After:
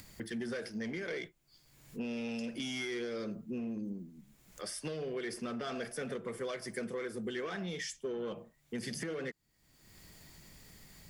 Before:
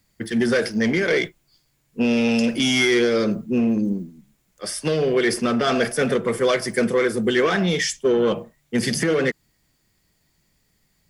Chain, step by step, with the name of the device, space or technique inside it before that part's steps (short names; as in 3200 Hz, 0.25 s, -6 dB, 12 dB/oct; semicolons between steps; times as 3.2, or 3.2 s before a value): upward and downward compression (upward compressor, threshold -34 dBFS; compressor 3:1, threshold -34 dBFS, peak gain reduction 14 dB); gain -6.5 dB